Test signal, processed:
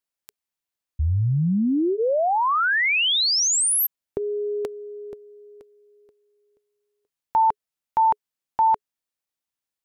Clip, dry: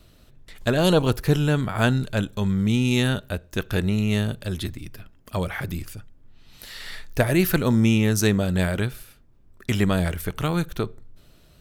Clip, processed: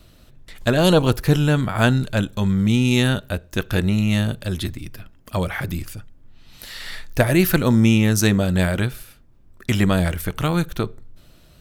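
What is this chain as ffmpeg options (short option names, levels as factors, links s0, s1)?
-af "bandreject=f=420:w=12,volume=1.5"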